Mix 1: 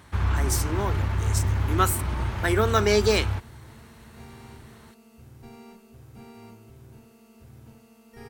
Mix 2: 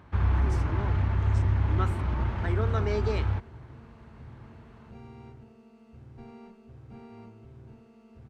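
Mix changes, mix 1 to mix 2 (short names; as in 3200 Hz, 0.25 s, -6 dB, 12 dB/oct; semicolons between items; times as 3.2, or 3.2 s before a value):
speech -8.5 dB; second sound: entry +0.75 s; master: add tape spacing loss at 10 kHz 23 dB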